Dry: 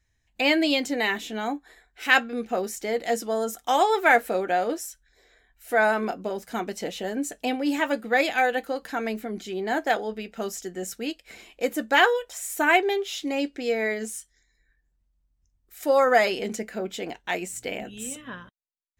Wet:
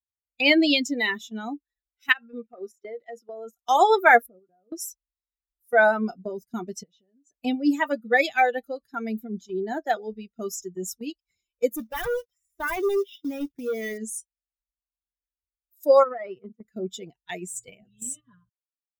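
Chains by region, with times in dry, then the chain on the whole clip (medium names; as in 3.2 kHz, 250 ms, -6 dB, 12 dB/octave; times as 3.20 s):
2.12–3.56 s: tone controls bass -10 dB, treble -12 dB + compression 16:1, threshold -26 dBFS
4.26–4.72 s: FFT filter 180 Hz 0 dB, 1.4 kHz -7 dB, 5 kHz -19 dB + compression 2.5:1, threshold -40 dBFS
6.83–7.41 s: low-pass 5.9 kHz + compression 16:1, threshold -37 dBFS
11.76–13.98 s: hard clipper -23 dBFS + Savitzky-Golay filter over 25 samples + companded quantiser 4-bit
16.03–16.65 s: compression 5:1, threshold -21 dBFS + power-law waveshaper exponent 1.4 + band-pass 100–2100 Hz
17.30–17.70 s: de-hum 279.9 Hz, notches 34 + three bands expanded up and down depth 40%
whole clip: expander on every frequency bin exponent 2; gate -46 dBFS, range -12 dB; trim +6 dB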